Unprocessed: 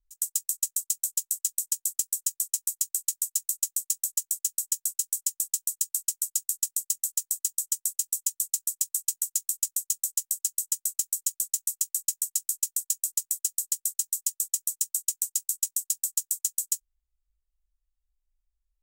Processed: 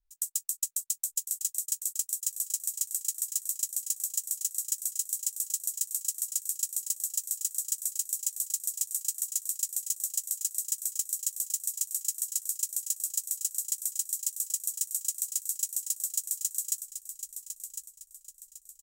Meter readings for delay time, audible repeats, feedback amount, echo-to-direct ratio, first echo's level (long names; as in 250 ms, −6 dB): 1,054 ms, 3, 36%, −8.5 dB, −9.0 dB